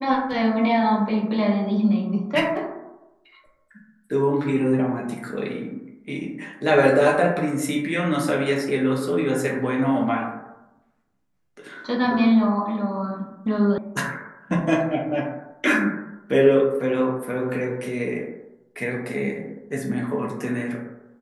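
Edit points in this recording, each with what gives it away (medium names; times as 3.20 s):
13.78 s: sound stops dead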